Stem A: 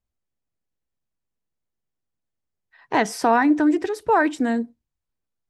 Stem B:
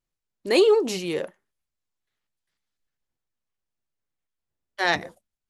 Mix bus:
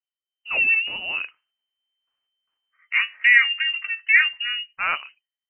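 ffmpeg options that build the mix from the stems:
-filter_complex "[0:a]lowpass=f=1.2k:t=q:w=11,flanger=delay=9.3:depth=3.1:regen=49:speed=0.67:shape=sinusoidal,volume=-13dB,afade=t=in:st=2.77:d=0.22:silence=0.354813[a];[1:a]volume=-11.5dB[b];[a][b]amix=inputs=2:normalize=0,dynaudnorm=f=130:g=9:m=11.5dB,lowpass=f=2.6k:t=q:w=0.5098,lowpass=f=2.6k:t=q:w=0.6013,lowpass=f=2.6k:t=q:w=0.9,lowpass=f=2.6k:t=q:w=2.563,afreqshift=-3100"

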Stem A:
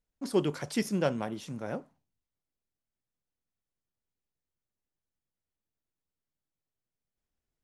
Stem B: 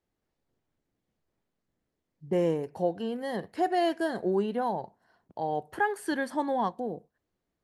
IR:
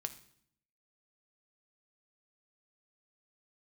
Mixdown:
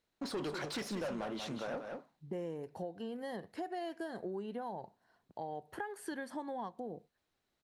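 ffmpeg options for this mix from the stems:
-filter_complex "[0:a]equalizer=f=4k:w=5.8:g=9,asplit=2[a][b];[b]highpass=f=720:p=1,volume=28dB,asoftclip=type=tanh:threshold=-13dB[c];[a][c]amix=inputs=2:normalize=0,lowpass=f=2.2k:p=1,volume=-6dB,volume=-10dB,asplit=2[d][e];[e]volume=-8.5dB[f];[1:a]acompressor=threshold=-29dB:ratio=2,volume=-5.5dB[g];[f]aecho=0:1:187:1[h];[d][g][h]amix=inputs=3:normalize=0,acompressor=threshold=-39dB:ratio=2.5"

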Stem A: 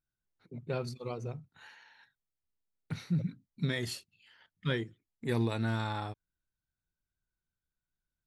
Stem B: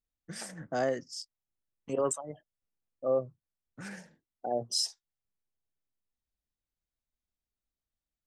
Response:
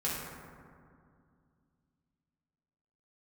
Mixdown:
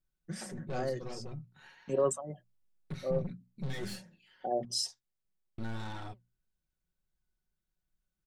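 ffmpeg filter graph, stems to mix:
-filter_complex "[0:a]flanger=delay=2.9:depth=4.8:regen=77:speed=1.5:shape=sinusoidal,aeval=exprs='(tanh(141*val(0)+0.45)-tanh(0.45))/141':c=same,volume=2dB,asplit=3[a][b][c];[a]atrim=end=4.65,asetpts=PTS-STARTPTS,afade=t=out:st=4.646:d=0.004:c=hsin[d];[b]atrim=start=4.65:end=5.58,asetpts=PTS-STARTPTS,volume=0[e];[c]atrim=start=5.58,asetpts=PTS-STARTPTS,afade=t=in:d=0.004:c=hsin[f];[d][e][f]concat=n=3:v=0:a=1,asplit=2[g][h];[1:a]volume=-4dB[i];[h]apad=whole_len=364510[j];[i][j]sidechaincompress=threshold=-45dB:ratio=8:attack=7.3:release=1330[k];[g][k]amix=inputs=2:normalize=0,lowshelf=f=460:g=7.5,bandreject=f=60:t=h:w=6,bandreject=f=120:t=h:w=6,bandreject=f=180:t=h:w=6,bandreject=f=240:t=h:w=6,aecho=1:1:5.4:0.43"

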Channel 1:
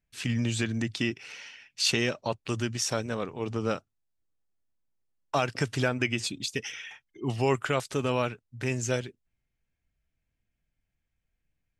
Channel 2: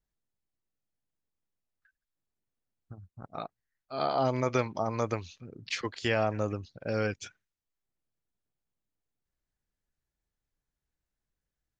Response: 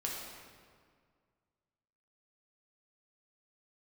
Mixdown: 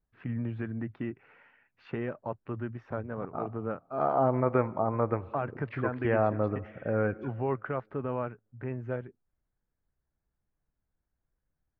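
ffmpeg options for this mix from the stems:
-filter_complex "[0:a]volume=-5dB[a];[1:a]volume=1.5dB,asplit=2[b][c];[c]volume=-18.5dB[d];[2:a]atrim=start_sample=2205[e];[d][e]afir=irnorm=-1:irlink=0[f];[a][b][f]amix=inputs=3:normalize=0,lowpass=f=1.6k:w=0.5412,lowpass=f=1.6k:w=1.3066"

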